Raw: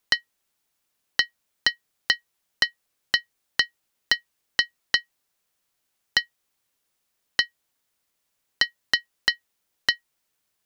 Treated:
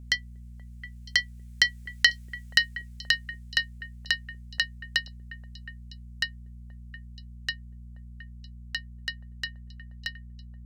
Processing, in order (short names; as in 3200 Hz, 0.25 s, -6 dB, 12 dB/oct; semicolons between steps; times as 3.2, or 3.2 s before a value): Doppler pass-by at 2.14, 11 m/s, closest 6.3 m; in parallel at -2 dB: negative-ratio compressor -32 dBFS; on the sum: graphic EQ 250/1000/2000/8000 Hz -12/-10/+6/+7 dB; buzz 60 Hz, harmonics 4, -43 dBFS -8 dB/oct; on a send: delay with a stepping band-pass 0.239 s, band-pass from 250 Hz, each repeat 1.4 oct, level -9.5 dB; on the sum: gain -1 dB